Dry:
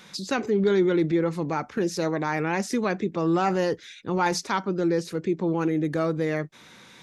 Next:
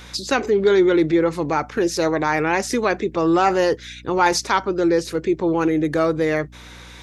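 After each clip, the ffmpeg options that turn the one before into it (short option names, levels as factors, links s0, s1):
-af "equalizer=f=190:w=2.2:g=-11,aeval=exprs='val(0)+0.00316*(sin(2*PI*60*n/s)+sin(2*PI*2*60*n/s)/2+sin(2*PI*3*60*n/s)/3+sin(2*PI*4*60*n/s)/4+sin(2*PI*5*60*n/s)/5)':c=same,volume=2.37"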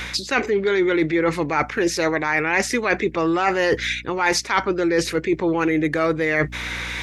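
-af "equalizer=f=2100:w=1.4:g=10.5,areverse,acompressor=threshold=0.0501:ratio=5,areverse,volume=2.51"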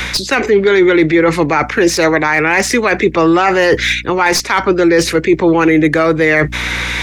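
-filter_complex "[0:a]acrossover=split=270|400|2300[s0][s1][s2][s3];[s3]aeval=exprs='clip(val(0),-1,0.0631)':c=same[s4];[s0][s1][s2][s4]amix=inputs=4:normalize=0,alimiter=level_in=3.55:limit=0.891:release=50:level=0:latency=1,volume=0.891"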